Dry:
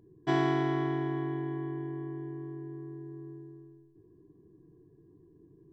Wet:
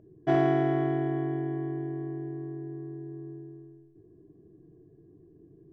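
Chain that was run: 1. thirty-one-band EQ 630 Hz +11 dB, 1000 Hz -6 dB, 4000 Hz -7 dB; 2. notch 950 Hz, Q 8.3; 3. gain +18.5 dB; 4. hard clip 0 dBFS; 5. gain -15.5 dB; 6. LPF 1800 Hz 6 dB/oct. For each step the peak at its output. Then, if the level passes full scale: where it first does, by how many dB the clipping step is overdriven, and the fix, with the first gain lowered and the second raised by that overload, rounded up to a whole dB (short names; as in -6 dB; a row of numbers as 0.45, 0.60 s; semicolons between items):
-14.5, -15.0, +3.5, 0.0, -15.5, -15.5 dBFS; step 3, 3.5 dB; step 3 +14.5 dB, step 5 -11.5 dB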